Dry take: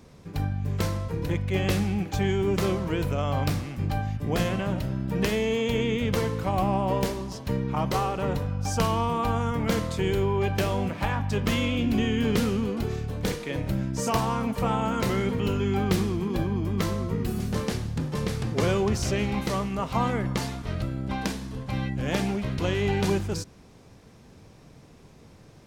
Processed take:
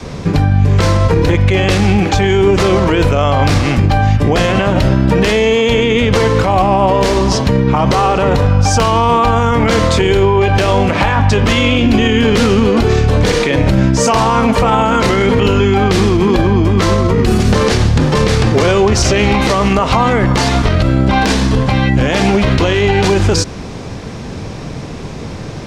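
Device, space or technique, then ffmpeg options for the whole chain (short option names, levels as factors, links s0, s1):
loud club master: -af "lowpass=6900,adynamicequalizer=threshold=0.0112:dfrequency=160:dqfactor=1:tfrequency=160:tqfactor=1:attack=5:release=100:ratio=0.375:range=3.5:mode=cutabove:tftype=bell,acompressor=threshold=0.0316:ratio=2,asoftclip=type=hard:threshold=0.126,alimiter=level_in=25.1:limit=0.891:release=50:level=0:latency=1,volume=0.794"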